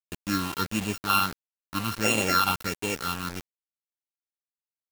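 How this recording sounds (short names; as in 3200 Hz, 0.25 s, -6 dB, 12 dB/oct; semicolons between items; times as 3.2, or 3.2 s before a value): a buzz of ramps at a fixed pitch in blocks of 32 samples; phasing stages 6, 1.5 Hz, lowest notch 500–1400 Hz; a quantiser's noise floor 6-bit, dither none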